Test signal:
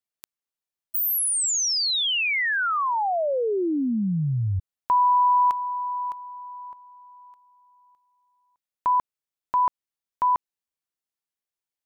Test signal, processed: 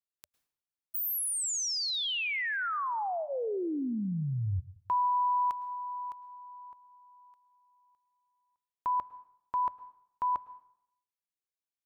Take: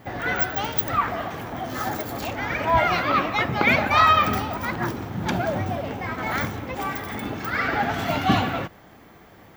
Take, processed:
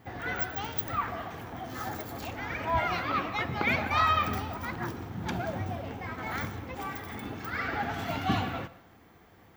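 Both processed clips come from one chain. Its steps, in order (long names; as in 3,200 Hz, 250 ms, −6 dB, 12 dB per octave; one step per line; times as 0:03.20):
parametric band 82 Hz +5 dB 0.56 octaves
notch filter 590 Hz, Q 12
dense smooth reverb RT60 0.71 s, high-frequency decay 0.8×, pre-delay 95 ms, DRR 17.5 dB
level −8.5 dB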